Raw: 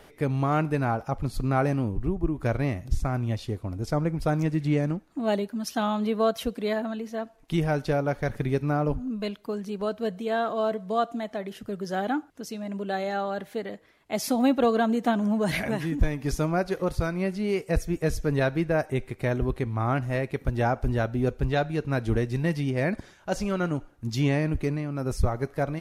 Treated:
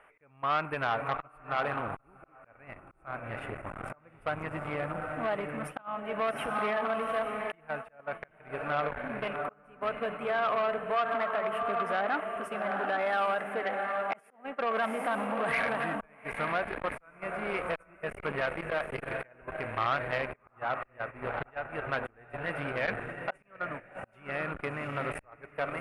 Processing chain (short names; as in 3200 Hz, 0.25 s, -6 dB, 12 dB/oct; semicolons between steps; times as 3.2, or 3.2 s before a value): in parallel at -11 dB: sine folder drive 5 dB, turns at -11.5 dBFS; on the sum: compressor 1.5:1, threshold -27 dBFS, peak gain reduction 5 dB; on a send: diffused feedback echo 0.78 s, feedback 41%, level -5.5 dB; on the sum: auto swell 0.529 s; resonant low shelf 460 Hz -7 dB, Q 1.5; limiter -20 dBFS, peak gain reduction 7.5 dB; EQ curve 160 Hz 0 dB, 390 Hz +4 dB, 780 Hz +4 dB, 1200 Hz +13 dB, 1800 Hz +9 dB, 2600 Hz +9 dB, 4200 Hz -23 dB, 6300 Hz -22 dB, 9300 Hz +1 dB, 14000 Hz -19 dB; gate -31 dBFS, range -13 dB; core saturation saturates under 1200 Hz; gain -5.5 dB